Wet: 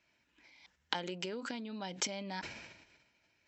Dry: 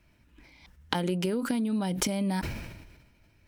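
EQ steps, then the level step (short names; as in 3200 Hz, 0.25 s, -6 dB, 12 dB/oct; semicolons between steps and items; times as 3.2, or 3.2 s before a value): HPF 890 Hz 6 dB/oct; brick-wall FIR low-pass 7800 Hz; bell 1200 Hz -4 dB 0.33 oct; -3.0 dB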